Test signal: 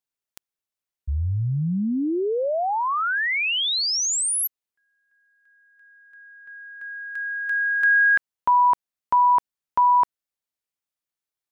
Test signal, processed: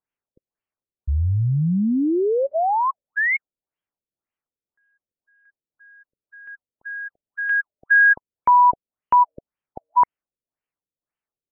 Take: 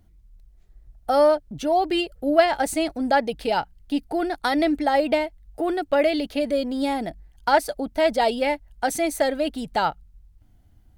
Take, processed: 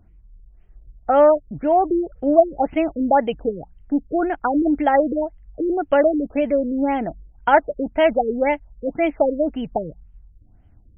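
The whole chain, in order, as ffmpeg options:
-af "afftfilt=real='re*lt(b*sr/1024,530*pow(3300/530,0.5+0.5*sin(2*PI*1.9*pts/sr)))':imag='im*lt(b*sr/1024,530*pow(3300/530,0.5+0.5*sin(2*PI*1.9*pts/sr)))':win_size=1024:overlap=0.75,volume=1.58"

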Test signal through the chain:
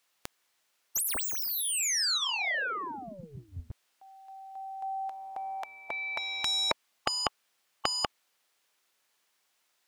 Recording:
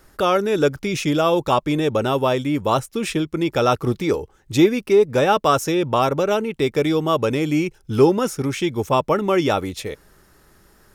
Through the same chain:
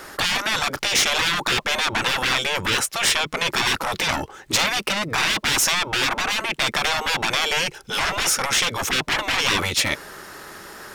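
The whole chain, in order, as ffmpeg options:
-filter_complex "[0:a]asplit=2[s0][s1];[s1]highpass=f=720:p=1,volume=20,asoftclip=type=tanh:threshold=0.708[s2];[s0][s2]amix=inputs=2:normalize=0,lowpass=f=4800:p=1,volume=0.501,afftfilt=real='re*lt(hypot(re,im),0.447)':imag='im*lt(hypot(re,im),0.447)':win_size=1024:overlap=0.75"

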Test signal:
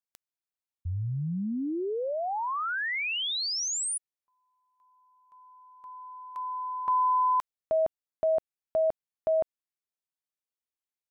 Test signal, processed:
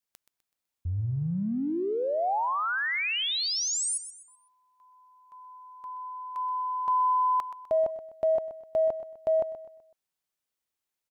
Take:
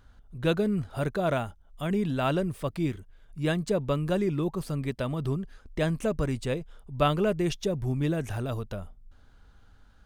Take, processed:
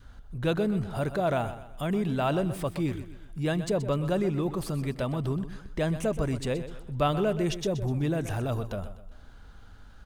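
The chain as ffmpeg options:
-filter_complex "[0:a]adynamicequalizer=threshold=0.00794:dfrequency=760:dqfactor=1.9:tfrequency=760:tqfactor=1.9:attack=5:release=100:ratio=0.375:range=2:mode=boostabove:tftype=bell,acompressor=threshold=0.00708:ratio=1.5:attack=0.11:release=26:detection=peak,asplit=2[s0][s1];[s1]aecho=0:1:126|252|378|504:0.237|0.0925|0.0361|0.0141[s2];[s0][s2]amix=inputs=2:normalize=0,volume=2.11"

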